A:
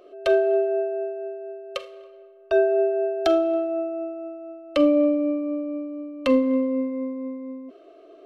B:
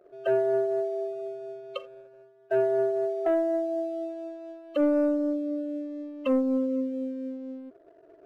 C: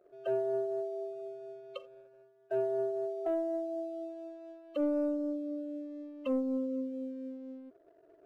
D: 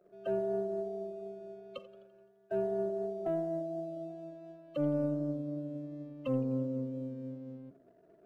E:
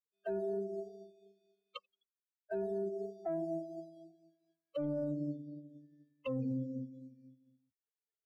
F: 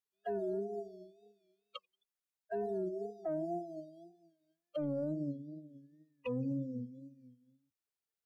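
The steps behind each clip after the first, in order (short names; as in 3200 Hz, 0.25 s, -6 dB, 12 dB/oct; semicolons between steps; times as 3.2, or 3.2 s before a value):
spectral gate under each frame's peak -15 dB strong; sample leveller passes 1; gain -7 dB
dynamic EQ 1800 Hz, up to -8 dB, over -50 dBFS, Q 1.4; gain -7 dB
octaver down 1 oct, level -3 dB; warbling echo 85 ms, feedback 57%, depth 128 cents, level -19 dB; gain -1.5 dB
per-bin expansion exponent 3; limiter -36.5 dBFS, peak gain reduction 11.5 dB; gain +6.5 dB
wow and flutter 95 cents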